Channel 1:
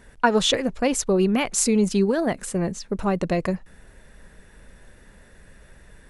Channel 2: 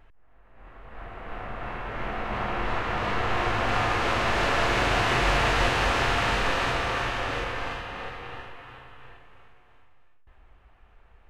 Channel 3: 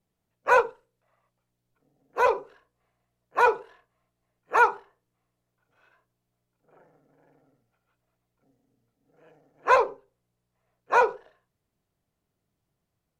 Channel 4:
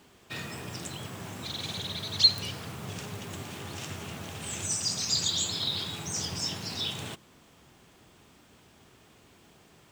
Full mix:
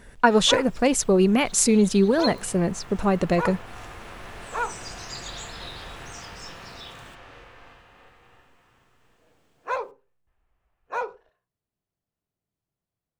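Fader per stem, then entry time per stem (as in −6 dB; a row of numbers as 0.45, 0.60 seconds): +1.5, −17.5, −9.0, −11.0 decibels; 0.00, 0.00, 0.00, 0.00 seconds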